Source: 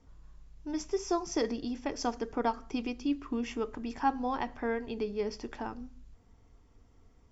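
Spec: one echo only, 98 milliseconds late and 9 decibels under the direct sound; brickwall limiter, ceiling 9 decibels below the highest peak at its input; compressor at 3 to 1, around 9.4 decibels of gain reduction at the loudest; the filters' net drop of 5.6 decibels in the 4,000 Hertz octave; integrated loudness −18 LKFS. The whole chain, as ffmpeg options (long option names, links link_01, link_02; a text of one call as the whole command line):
ffmpeg -i in.wav -af "equalizer=frequency=4000:width_type=o:gain=-8.5,acompressor=threshold=-38dB:ratio=3,alimiter=level_in=10.5dB:limit=-24dB:level=0:latency=1,volume=-10.5dB,aecho=1:1:98:0.355,volume=26dB" out.wav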